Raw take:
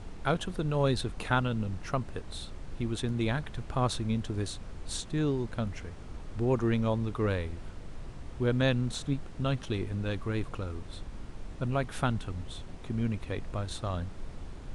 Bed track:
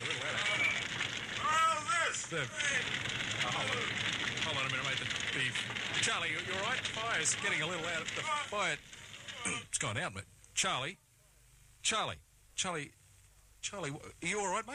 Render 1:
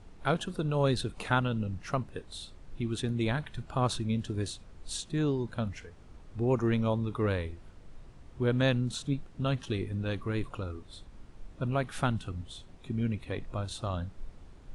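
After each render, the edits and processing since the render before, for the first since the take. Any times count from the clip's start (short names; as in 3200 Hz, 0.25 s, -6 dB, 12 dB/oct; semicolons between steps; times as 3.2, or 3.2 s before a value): noise print and reduce 9 dB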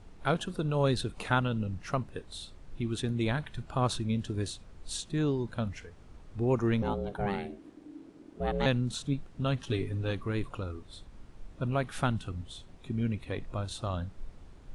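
6.82–8.66 ring modulator 300 Hz; 9.68–10.11 comb 7.3 ms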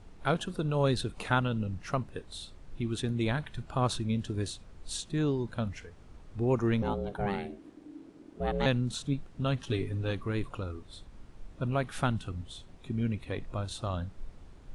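nothing audible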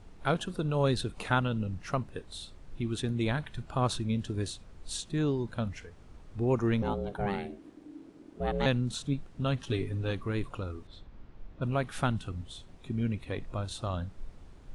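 10.87–11.62 air absorption 160 m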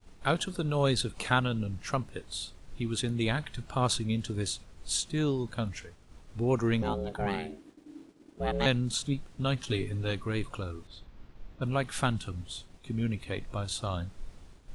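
expander -46 dBFS; high shelf 2600 Hz +8 dB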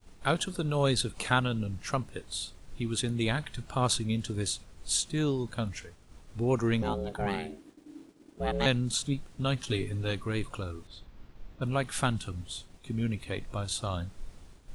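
high shelf 9400 Hz +7 dB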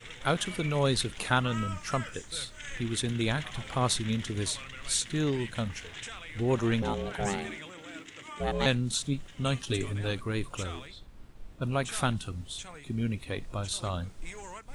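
add bed track -9.5 dB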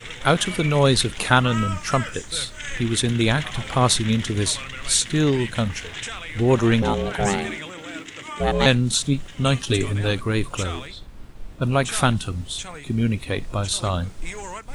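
gain +9.5 dB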